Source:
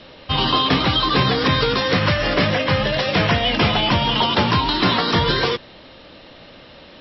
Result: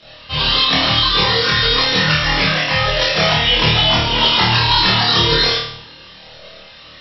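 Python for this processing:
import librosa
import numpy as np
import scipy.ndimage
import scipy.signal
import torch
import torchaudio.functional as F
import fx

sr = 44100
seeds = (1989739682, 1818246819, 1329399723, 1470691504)

p1 = fx.low_shelf(x, sr, hz=490.0, db=-7.5)
p2 = fx.room_shoebox(p1, sr, seeds[0], volume_m3=2600.0, walls='furnished', distance_m=0.63)
p3 = fx.chorus_voices(p2, sr, voices=4, hz=0.29, base_ms=26, depth_ms=1.4, mix_pct=65)
p4 = fx.high_shelf(p3, sr, hz=3900.0, db=9.5)
p5 = p4 + fx.room_flutter(p4, sr, wall_m=4.5, rt60_s=0.6, dry=0)
y = F.gain(torch.from_numpy(p5), 2.5).numpy()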